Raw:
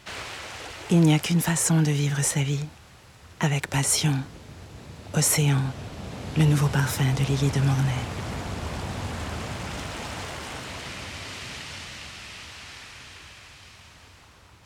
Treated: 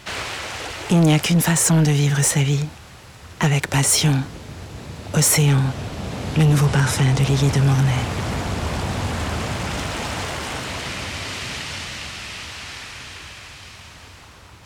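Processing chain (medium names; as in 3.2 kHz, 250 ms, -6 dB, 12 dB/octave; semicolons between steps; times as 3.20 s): 6.66–7.20 s: steep low-pass 11 kHz; saturation -18.5 dBFS, distortion -14 dB; trim +8 dB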